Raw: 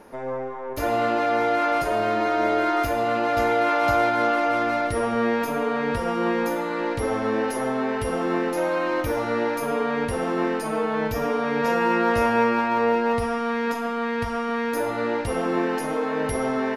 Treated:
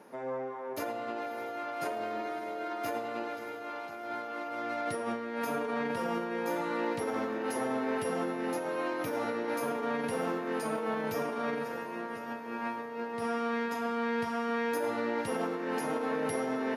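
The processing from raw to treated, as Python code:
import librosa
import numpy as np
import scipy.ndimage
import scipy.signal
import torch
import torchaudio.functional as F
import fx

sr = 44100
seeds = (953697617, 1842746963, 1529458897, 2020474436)

p1 = fx.over_compress(x, sr, threshold_db=-25.0, ratio=-0.5)
p2 = scipy.signal.sosfilt(scipy.signal.butter(4, 140.0, 'highpass', fs=sr, output='sos'), p1)
p3 = p2 + fx.echo_diffused(p2, sr, ms=608, feedback_pct=60, wet_db=-12.5, dry=0)
y = p3 * librosa.db_to_amplitude(-8.5)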